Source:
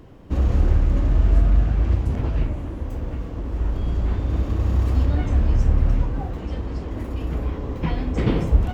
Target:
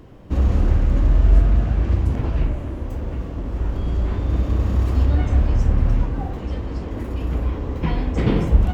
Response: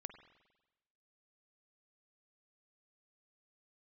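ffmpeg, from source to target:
-filter_complex "[1:a]atrim=start_sample=2205[a];[0:a][a]afir=irnorm=-1:irlink=0,volume=6.5dB"

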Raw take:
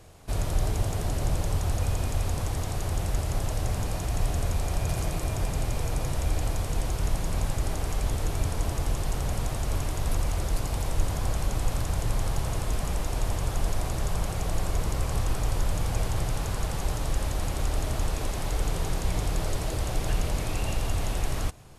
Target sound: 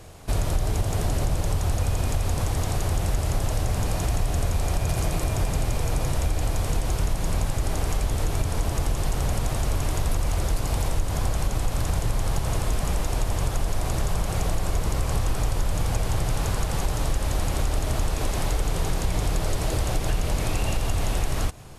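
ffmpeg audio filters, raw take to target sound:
-af "acompressor=threshold=-26dB:ratio=4,volume=6.5dB"

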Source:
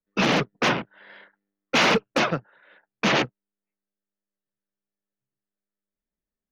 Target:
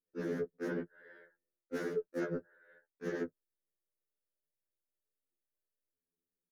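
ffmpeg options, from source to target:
-af "firequalizer=gain_entry='entry(120,0);entry(430,11);entry(700,-11);entry(1100,-13);entry(1600,1);entry(2500,-21);entry(10000,6)':delay=0.05:min_phase=1,areverse,acompressor=threshold=-27dB:ratio=10,areverse,afftfilt=real='re*2*eq(mod(b,4),0)':imag='im*2*eq(mod(b,4),0)':win_size=2048:overlap=0.75,volume=-4.5dB"

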